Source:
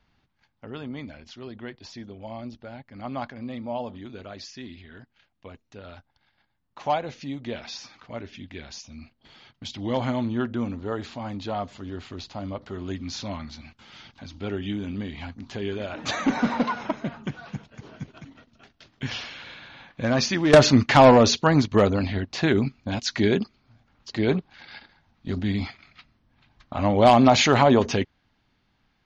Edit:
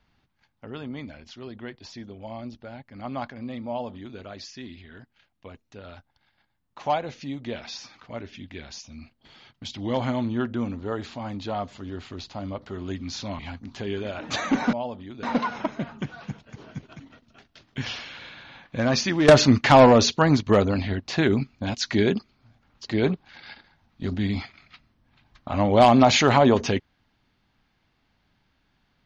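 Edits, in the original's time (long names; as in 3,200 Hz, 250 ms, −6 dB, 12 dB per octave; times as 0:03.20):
0:03.68–0:04.18: duplicate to 0:16.48
0:13.39–0:15.14: remove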